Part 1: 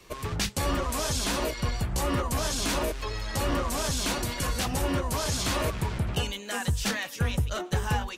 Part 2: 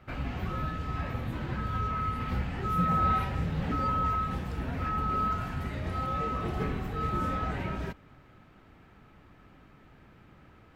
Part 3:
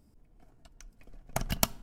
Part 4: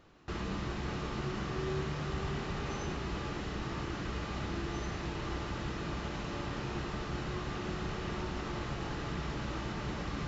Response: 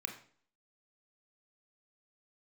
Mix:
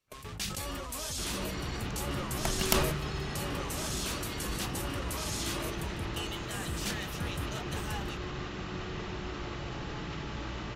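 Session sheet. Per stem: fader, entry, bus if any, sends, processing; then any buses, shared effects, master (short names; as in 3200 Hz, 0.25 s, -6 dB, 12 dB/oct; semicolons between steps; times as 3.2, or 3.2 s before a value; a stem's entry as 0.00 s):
-12.0 dB, 0.00 s, no send, echo send -18 dB, high shelf 5300 Hz +9 dB
-13.5 dB, 0.00 s, no send, no echo send, compressor, threshold -40 dBFS, peak gain reduction 16.5 dB
-2.0 dB, 1.10 s, no send, no echo send, vibrato 0.36 Hz 55 cents
-3.5 dB, 0.90 s, no send, echo send -3 dB, dry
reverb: off
echo: echo 0.15 s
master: gate with hold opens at -33 dBFS; bell 3000 Hz +3.5 dB 1.1 oct; sustainer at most 43 dB/s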